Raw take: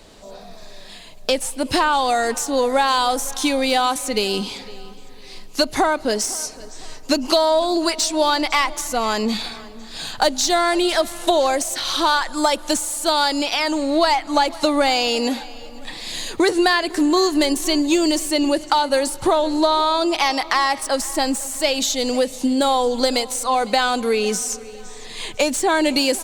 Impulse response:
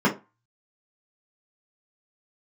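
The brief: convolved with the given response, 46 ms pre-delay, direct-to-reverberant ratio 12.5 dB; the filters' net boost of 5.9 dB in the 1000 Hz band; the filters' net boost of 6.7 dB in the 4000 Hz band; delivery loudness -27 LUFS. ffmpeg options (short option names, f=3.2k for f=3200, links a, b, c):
-filter_complex "[0:a]equalizer=f=1k:t=o:g=7,equalizer=f=4k:t=o:g=7.5,asplit=2[a][b];[1:a]atrim=start_sample=2205,adelay=46[c];[b][c]afir=irnorm=-1:irlink=0,volume=-29dB[d];[a][d]amix=inputs=2:normalize=0,volume=-12dB"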